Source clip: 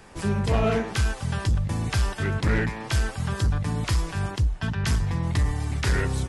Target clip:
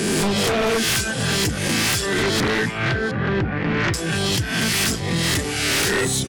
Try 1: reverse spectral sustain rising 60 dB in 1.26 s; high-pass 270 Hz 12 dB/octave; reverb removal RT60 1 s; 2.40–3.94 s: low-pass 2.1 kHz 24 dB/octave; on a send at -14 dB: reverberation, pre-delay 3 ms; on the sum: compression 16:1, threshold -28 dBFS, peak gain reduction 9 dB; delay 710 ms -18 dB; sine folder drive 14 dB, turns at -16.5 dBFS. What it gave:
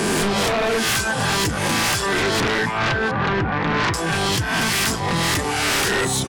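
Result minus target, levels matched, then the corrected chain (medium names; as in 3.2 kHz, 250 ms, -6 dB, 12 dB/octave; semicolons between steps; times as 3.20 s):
1 kHz band +5.5 dB
reverse spectral sustain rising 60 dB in 1.26 s; high-pass 270 Hz 12 dB/octave; peaking EQ 950 Hz -14.5 dB 0.95 oct; reverb removal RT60 1 s; 2.40–3.94 s: low-pass 2.1 kHz 24 dB/octave; on a send at -14 dB: reverberation, pre-delay 3 ms; on the sum: compression 16:1, threshold -28 dBFS, peak gain reduction 5 dB; delay 710 ms -18 dB; sine folder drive 14 dB, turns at -16.5 dBFS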